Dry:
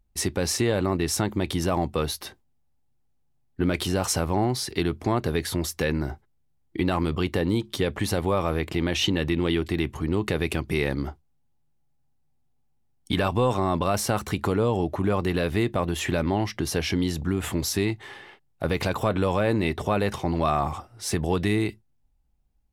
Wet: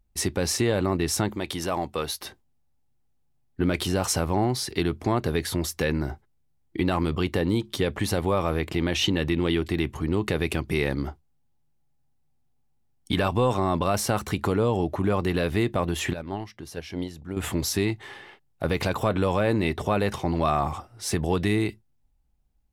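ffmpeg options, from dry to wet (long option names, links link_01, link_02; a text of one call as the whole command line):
ffmpeg -i in.wav -filter_complex "[0:a]asettb=1/sr,asplit=3[link_01][link_02][link_03];[link_01]atrim=end=1.354[link_04];[link_02]atrim=start=1.35:end=2.21,asetpts=PTS-STARTPTS,afade=type=in:duration=0.004:curve=qsin,afade=type=out:start_time=0.856:duration=0.004:curve=qsin,lowshelf=frequency=290:gain=-10[link_05];[link_03]atrim=start=2.206[link_06];[link_04][link_05]acrossfade=duration=0.004:curve1=hsin:curve2=qsin[link_07];[link_07][link_06]acrossfade=duration=0.004:curve1=qsin:curve2=hsin,asettb=1/sr,asplit=3[link_08][link_09][link_10];[link_08]atrim=end=16.134[link_11];[link_09]atrim=start=16.13:end=17.37,asetpts=PTS-STARTPTS,afade=type=in:duration=0.004:curve=qsin,afade=type=out:start_time=1.236:duration=0.004:curve=qsin,agate=range=-13dB:threshold=-23dB:ratio=16:release=100:detection=peak[link_12];[link_10]atrim=start=17.366[link_13];[link_11][link_12]acrossfade=duration=0.004:curve1=hsin:curve2=qsin[link_14];[link_14][link_13]acrossfade=duration=0.004:curve1=qsin:curve2=hsin" out.wav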